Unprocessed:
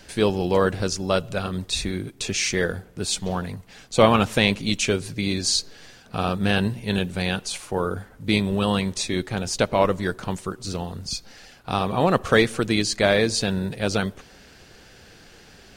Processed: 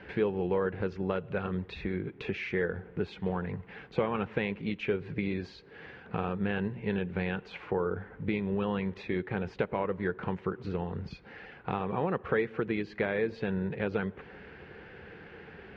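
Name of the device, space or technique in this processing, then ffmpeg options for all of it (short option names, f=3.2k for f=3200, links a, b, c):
bass amplifier: -af "acompressor=threshold=-31dB:ratio=4,highpass=77,equalizer=f=110:t=q:w=4:g=-6,equalizer=f=260:t=q:w=4:g=-6,equalizer=f=440:t=q:w=4:g=4,equalizer=f=640:t=q:w=4:g=-8,equalizer=f=1.2k:t=q:w=4:g=-4,lowpass=f=2.3k:w=0.5412,lowpass=f=2.3k:w=1.3066,volume=3.5dB"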